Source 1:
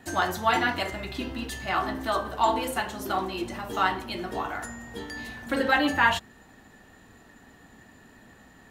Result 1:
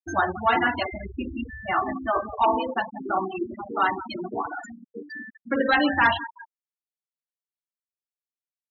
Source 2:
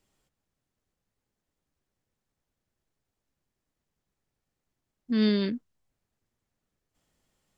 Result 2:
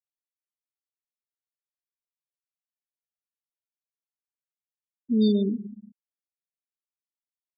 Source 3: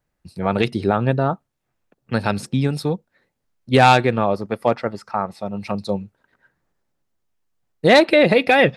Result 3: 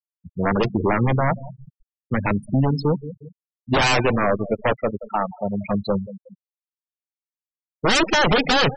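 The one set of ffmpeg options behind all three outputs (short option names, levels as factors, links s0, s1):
-af "aeval=exprs='0.188*(abs(mod(val(0)/0.188+3,4)-2)-1)':c=same,aecho=1:1:180|360|540|720|900|1080:0.2|0.11|0.0604|0.0332|0.0183|0.01,afftfilt=real='re*gte(hypot(re,im),0.0794)':imag='im*gte(hypot(re,im),0.0794)':win_size=1024:overlap=0.75,volume=1.41"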